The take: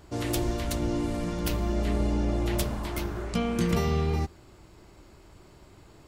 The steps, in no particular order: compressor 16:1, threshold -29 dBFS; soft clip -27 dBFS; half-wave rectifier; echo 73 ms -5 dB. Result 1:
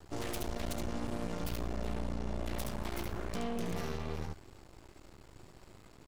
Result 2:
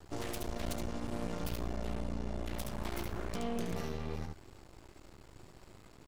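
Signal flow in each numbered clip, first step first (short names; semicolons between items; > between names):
soft clip > echo > compressor > half-wave rectifier; compressor > soft clip > echo > half-wave rectifier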